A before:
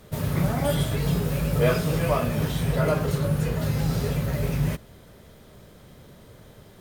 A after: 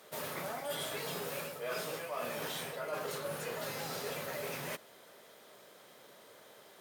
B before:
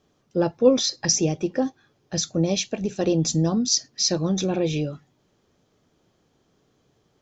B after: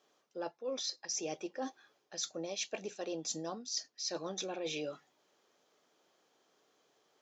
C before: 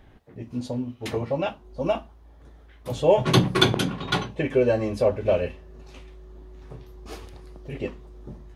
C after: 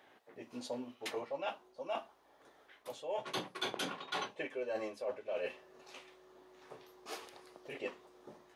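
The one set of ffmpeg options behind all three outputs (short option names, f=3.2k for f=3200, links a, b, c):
-af "highpass=520,areverse,acompressor=threshold=-33dB:ratio=16,areverse,aeval=exprs='0.0708*(cos(1*acos(clip(val(0)/0.0708,-1,1)))-cos(1*PI/2))+0.000794*(cos(2*acos(clip(val(0)/0.0708,-1,1)))-cos(2*PI/2))':c=same,volume=-2dB"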